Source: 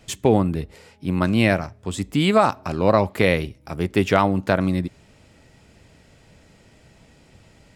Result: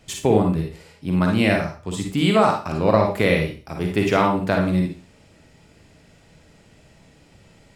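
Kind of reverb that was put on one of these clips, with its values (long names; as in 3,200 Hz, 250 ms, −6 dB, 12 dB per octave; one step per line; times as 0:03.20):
four-comb reverb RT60 0.35 s, DRR 1.5 dB
level −2 dB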